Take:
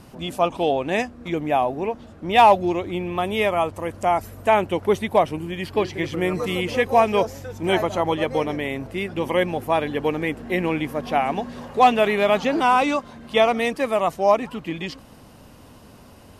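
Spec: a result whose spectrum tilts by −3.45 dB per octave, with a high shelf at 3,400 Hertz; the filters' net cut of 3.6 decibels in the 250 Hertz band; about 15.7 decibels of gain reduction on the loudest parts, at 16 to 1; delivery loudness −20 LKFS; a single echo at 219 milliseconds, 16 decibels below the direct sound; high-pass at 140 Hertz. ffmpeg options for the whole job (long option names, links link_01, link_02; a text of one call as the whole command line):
ffmpeg -i in.wav -af "highpass=140,equalizer=frequency=250:width_type=o:gain=-4.5,highshelf=frequency=3400:gain=-3,acompressor=threshold=-25dB:ratio=16,aecho=1:1:219:0.158,volume=11dB" out.wav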